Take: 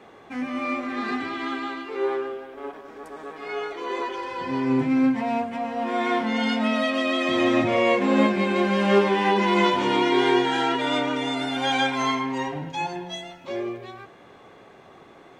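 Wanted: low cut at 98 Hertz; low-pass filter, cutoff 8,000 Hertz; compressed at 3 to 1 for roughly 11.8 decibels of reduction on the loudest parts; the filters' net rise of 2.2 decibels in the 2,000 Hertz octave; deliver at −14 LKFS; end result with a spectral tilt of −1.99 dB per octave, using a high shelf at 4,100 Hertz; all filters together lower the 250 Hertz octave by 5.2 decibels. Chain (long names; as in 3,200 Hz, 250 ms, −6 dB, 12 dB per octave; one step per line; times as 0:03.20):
high-pass filter 98 Hz
low-pass filter 8,000 Hz
parametric band 250 Hz −6.5 dB
parametric band 2,000 Hz +3.5 dB
high-shelf EQ 4,100 Hz −3.5 dB
downward compressor 3 to 1, threshold −33 dBFS
level +19.5 dB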